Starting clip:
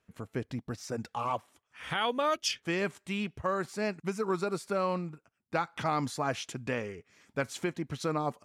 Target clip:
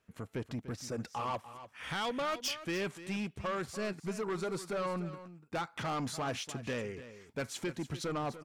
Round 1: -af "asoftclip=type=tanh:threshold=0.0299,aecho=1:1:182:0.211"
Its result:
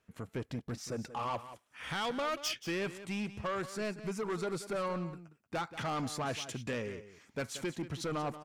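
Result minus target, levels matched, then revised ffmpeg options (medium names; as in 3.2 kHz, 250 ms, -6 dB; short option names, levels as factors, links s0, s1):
echo 112 ms early
-af "asoftclip=type=tanh:threshold=0.0299,aecho=1:1:294:0.211"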